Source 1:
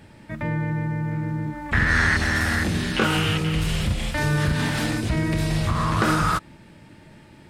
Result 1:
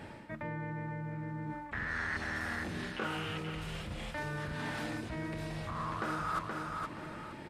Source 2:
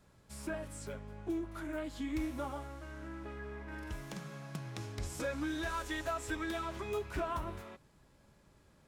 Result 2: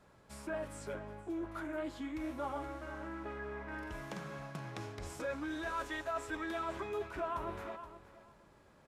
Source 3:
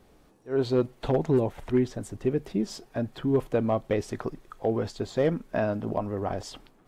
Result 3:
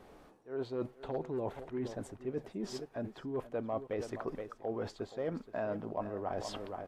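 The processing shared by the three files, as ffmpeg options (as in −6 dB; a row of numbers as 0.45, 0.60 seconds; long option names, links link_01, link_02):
-af "aecho=1:1:474|948:0.158|0.0285,aresample=32000,aresample=44100,areverse,acompressor=threshold=-39dB:ratio=5,areverse,equalizer=frequency=850:width=0.31:gain=9.5,volume=-4dB"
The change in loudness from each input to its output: −15.5, −1.0, −11.0 LU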